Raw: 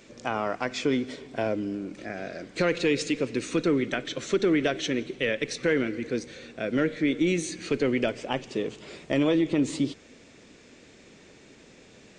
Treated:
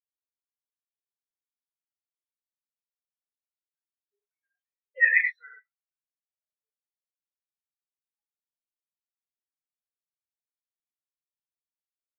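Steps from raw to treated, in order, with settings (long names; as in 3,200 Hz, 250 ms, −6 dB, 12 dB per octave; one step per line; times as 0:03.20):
source passing by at 0:05.16, 17 m/s, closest 1.2 metres
high-shelf EQ 6,000 Hz −9 dB
auto-filter high-pass saw down 1.2 Hz 660–1,600 Hz
low-shelf EQ 450 Hz −7 dB
reverb whose tail is shaped and stops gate 160 ms flat, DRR −3.5 dB
every bin expanded away from the loudest bin 4 to 1
level +7.5 dB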